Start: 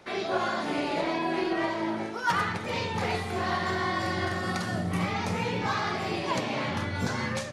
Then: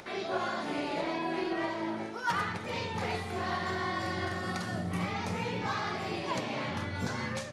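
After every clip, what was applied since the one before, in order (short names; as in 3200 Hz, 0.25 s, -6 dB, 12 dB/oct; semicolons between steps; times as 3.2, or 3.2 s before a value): upward compressor, threshold -37 dBFS; gain -4.5 dB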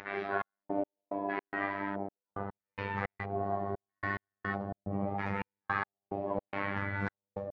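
LFO low-pass square 0.77 Hz 640–1800 Hz; robotiser 99.4 Hz; step gate "xxx..x..xx.x" 108 bpm -60 dB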